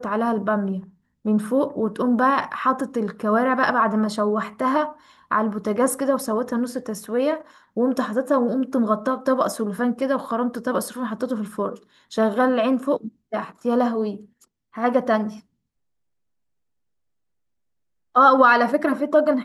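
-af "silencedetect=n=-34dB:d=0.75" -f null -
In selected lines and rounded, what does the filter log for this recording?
silence_start: 15.37
silence_end: 18.15 | silence_duration: 2.79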